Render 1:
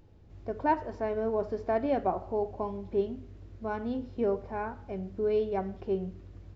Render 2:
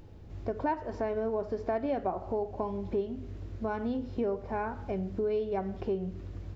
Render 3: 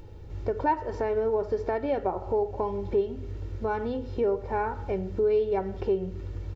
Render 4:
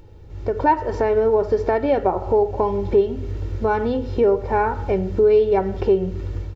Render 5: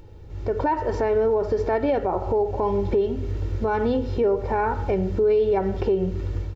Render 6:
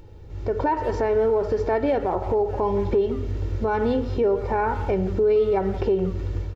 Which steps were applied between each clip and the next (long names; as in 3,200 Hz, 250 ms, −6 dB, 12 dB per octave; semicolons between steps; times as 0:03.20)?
downward compressor 3 to 1, threshold −38 dBFS, peak gain reduction 13 dB; level +7 dB
comb filter 2.2 ms, depth 48%; level +3.5 dB
automatic gain control gain up to 9 dB
brickwall limiter −14 dBFS, peak gain reduction 8 dB
far-end echo of a speakerphone 170 ms, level −13 dB